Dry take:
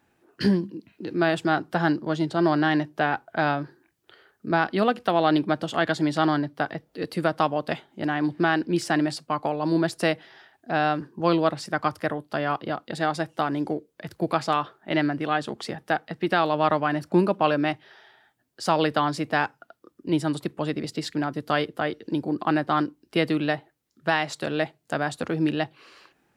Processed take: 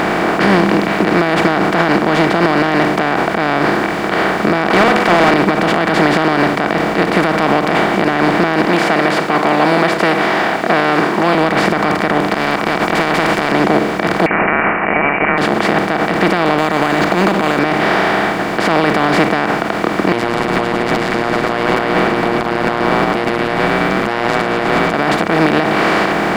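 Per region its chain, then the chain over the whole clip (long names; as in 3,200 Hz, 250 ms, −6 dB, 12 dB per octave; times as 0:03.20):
0:04.70–0:05.34: bass and treble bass −14 dB, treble +3 dB + downward compressor 3 to 1, threshold −24 dBFS + mid-hump overdrive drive 23 dB, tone 4,600 Hz, clips at −11 dBFS
0:08.65–0:11.35: high-pass filter 400 Hz + flanger whose copies keep moving one way falling 1.2 Hz
0:12.34–0:13.52: downward compressor, threshold −35 dBFS + every bin compressed towards the loudest bin 10 to 1
0:14.26–0:15.38: high-frequency loss of the air 400 metres + voice inversion scrambler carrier 2,600 Hz
0:16.58–0:17.59: parametric band 4,000 Hz +14 dB 1 octave + downward compressor 12 to 1, threshold −28 dBFS + bad sample-rate conversion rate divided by 4×, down filtered, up hold
0:20.12–0:24.94: phases set to zero 118 Hz + echo with shifted repeats 109 ms, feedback 61%, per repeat −100 Hz, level −15 dB
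whole clip: compressor on every frequency bin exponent 0.2; high-shelf EQ 4,100 Hz −6 dB; boost into a limiter +6.5 dB; level −1 dB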